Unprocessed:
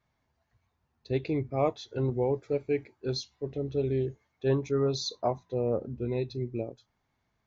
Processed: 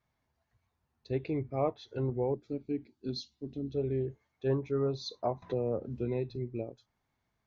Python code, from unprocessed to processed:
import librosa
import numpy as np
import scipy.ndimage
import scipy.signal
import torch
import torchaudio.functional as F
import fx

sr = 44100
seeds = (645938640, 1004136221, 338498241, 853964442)

y = fx.env_lowpass_down(x, sr, base_hz=1800.0, full_db=-24.0)
y = fx.graphic_eq(y, sr, hz=(125, 250, 500, 1000, 2000, 4000), db=(-5, 10, -11, -9, -11, 5), at=(2.34, 3.74))
y = fx.band_squash(y, sr, depth_pct=70, at=(5.42, 6.36))
y = y * 10.0 ** (-3.5 / 20.0)